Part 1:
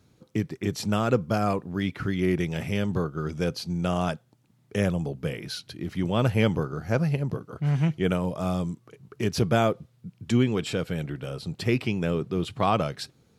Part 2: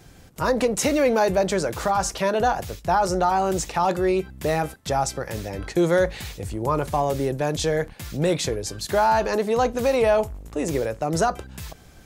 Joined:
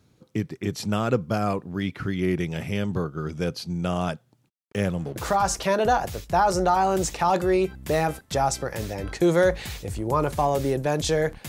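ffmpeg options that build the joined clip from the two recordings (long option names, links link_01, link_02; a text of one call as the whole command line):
ffmpeg -i cue0.wav -i cue1.wav -filter_complex "[0:a]asplit=3[link_01][link_02][link_03];[link_01]afade=type=out:start_time=4.48:duration=0.02[link_04];[link_02]aeval=exprs='sgn(val(0))*max(abs(val(0))-0.00596,0)':channel_layout=same,afade=type=in:start_time=4.48:duration=0.02,afade=type=out:start_time=5.16:duration=0.02[link_05];[link_03]afade=type=in:start_time=5.16:duration=0.02[link_06];[link_04][link_05][link_06]amix=inputs=3:normalize=0,apad=whole_dur=11.48,atrim=end=11.48,atrim=end=5.162[link_07];[1:a]atrim=start=1.708:end=8.03[link_08];[link_07][link_08]acrossfade=duration=0.004:curve1=hsin:curve2=hsin" out.wav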